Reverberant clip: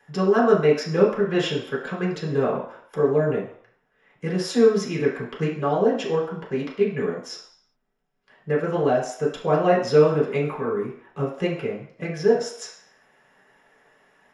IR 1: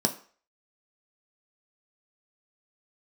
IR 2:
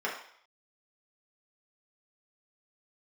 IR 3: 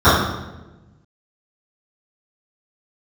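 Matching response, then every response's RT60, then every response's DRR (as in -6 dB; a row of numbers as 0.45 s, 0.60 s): 2; 0.45 s, 0.60 s, 1.1 s; 3.5 dB, -5.5 dB, -19.0 dB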